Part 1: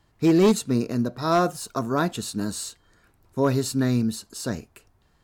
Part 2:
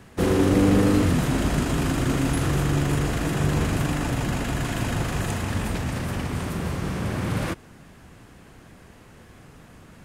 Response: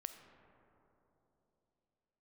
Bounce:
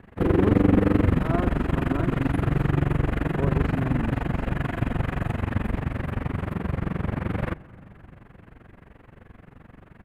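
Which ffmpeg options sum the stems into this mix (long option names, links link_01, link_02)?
-filter_complex "[0:a]lowpass=1300,volume=-9.5dB[link_01];[1:a]firequalizer=gain_entry='entry(2000,0);entry(5600,-24);entry(12000,-15)':delay=0.05:min_phase=1,tremolo=f=23:d=0.947,volume=0.5dB,asplit=2[link_02][link_03];[link_03]volume=-9dB[link_04];[2:a]atrim=start_sample=2205[link_05];[link_04][link_05]afir=irnorm=-1:irlink=0[link_06];[link_01][link_02][link_06]amix=inputs=3:normalize=0,lowshelf=frequency=110:gain=4"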